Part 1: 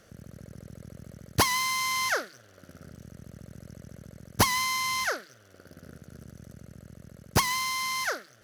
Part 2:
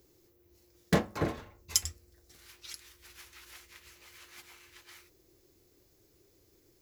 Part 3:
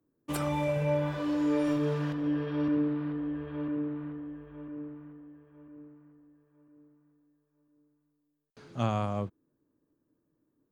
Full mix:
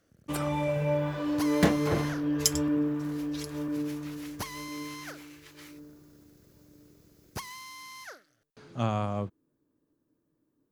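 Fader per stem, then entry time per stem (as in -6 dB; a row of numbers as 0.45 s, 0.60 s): -15.0 dB, +2.0 dB, +0.5 dB; 0.00 s, 0.70 s, 0.00 s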